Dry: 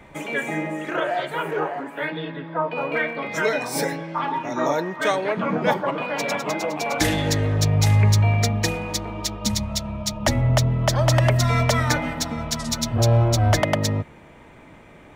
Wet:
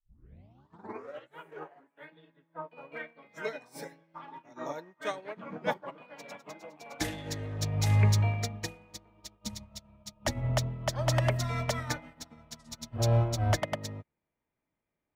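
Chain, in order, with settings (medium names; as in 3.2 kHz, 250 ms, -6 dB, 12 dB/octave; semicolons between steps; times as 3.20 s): tape start-up on the opening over 1.38 s; upward expansion 2.5:1, over -37 dBFS; trim -5 dB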